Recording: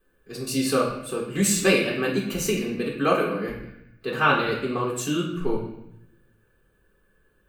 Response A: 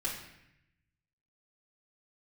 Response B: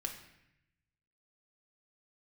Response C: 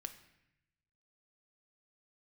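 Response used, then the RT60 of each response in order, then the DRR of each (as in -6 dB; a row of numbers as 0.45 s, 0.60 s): A; 0.80 s, 0.80 s, 0.80 s; -9.5 dB, 0.5 dB, 6.0 dB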